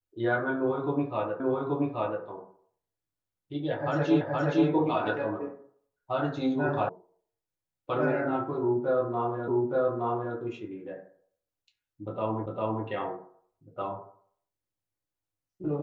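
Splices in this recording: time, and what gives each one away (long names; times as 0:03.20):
0:01.40: the same again, the last 0.83 s
0:04.21: the same again, the last 0.47 s
0:06.89: cut off before it has died away
0:09.48: the same again, the last 0.87 s
0:12.46: the same again, the last 0.4 s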